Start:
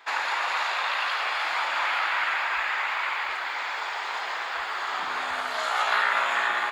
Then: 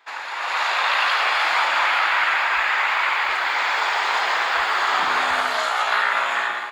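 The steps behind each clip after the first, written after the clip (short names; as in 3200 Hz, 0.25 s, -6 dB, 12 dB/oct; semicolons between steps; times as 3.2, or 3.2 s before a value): AGC gain up to 16 dB; gain -5 dB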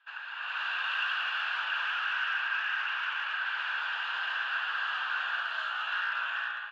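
hard clip -18 dBFS, distortion -12 dB; double band-pass 2100 Hz, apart 0.82 oct; air absorption 70 m; gain -2.5 dB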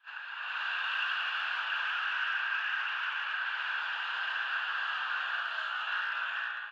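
pre-echo 33 ms -13.5 dB; gain -1.5 dB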